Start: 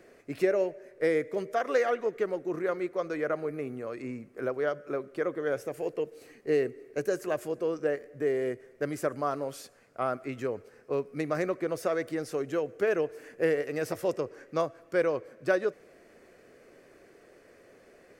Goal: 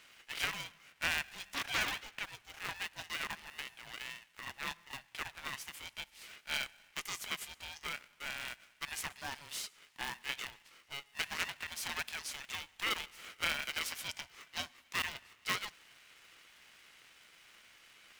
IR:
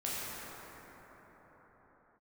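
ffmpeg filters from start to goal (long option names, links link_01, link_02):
-af "highpass=frequency=2700:width_type=q:width=2.7,aeval=exprs='val(0)*sgn(sin(2*PI*420*n/s))':channel_layout=same,volume=3dB"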